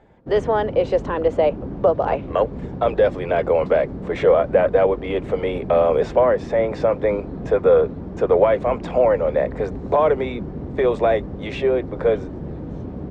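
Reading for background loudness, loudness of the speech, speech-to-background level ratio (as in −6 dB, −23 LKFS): −32.0 LKFS, −20.0 LKFS, 12.0 dB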